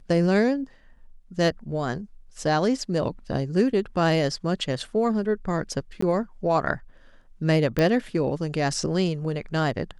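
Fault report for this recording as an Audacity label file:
6.010000	6.020000	dropout 14 ms
7.790000	7.790000	pop -11 dBFS

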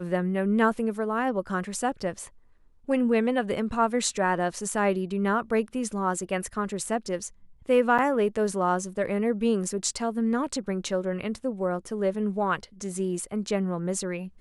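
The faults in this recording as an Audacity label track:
7.980000	7.990000	dropout 6.6 ms

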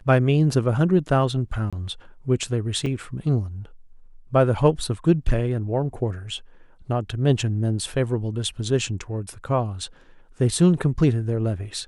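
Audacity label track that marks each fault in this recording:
1.700000	1.730000	dropout 26 ms
2.860000	2.860000	dropout 3.1 ms

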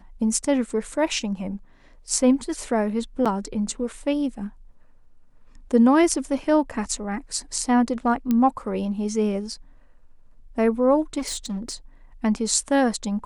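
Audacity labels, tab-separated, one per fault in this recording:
3.250000	3.260000	dropout 6.5 ms
8.310000	8.310000	pop -11 dBFS
11.180000	11.750000	clipped -24.5 dBFS

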